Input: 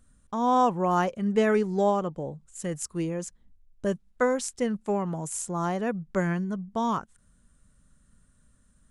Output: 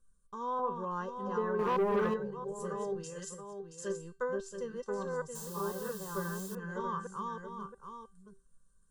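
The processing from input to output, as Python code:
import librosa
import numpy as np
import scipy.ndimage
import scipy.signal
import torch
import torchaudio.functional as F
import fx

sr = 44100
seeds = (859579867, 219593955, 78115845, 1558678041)

y = fx.reverse_delay(x, sr, ms=589, wet_db=-2)
y = fx.comb_fb(y, sr, f0_hz=390.0, decay_s=0.27, harmonics='all', damping=0.0, mix_pct=80)
y = fx.env_lowpass_down(y, sr, base_hz=410.0, full_db=-24.0)
y = fx.weighting(y, sr, curve='D', at=(3.03, 3.88), fade=0.02)
y = y + 10.0 ** (-7.5 / 20.0) * np.pad(y, (int(677 * sr / 1000.0), 0))[:len(y)]
y = fx.dynamic_eq(y, sr, hz=2200.0, q=0.71, threshold_db=-52.0, ratio=4.0, max_db=4)
y = fx.quant_dither(y, sr, seeds[0], bits=8, dither='triangular', at=(5.35, 6.55))
y = fx.fixed_phaser(y, sr, hz=450.0, stages=8)
y = y + 0.42 * np.pad(y, (int(1.9 * sr / 1000.0), 0))[:len(y)]
y = fx.leveller(y, sr, passes=2, at=(1.59, 2.14))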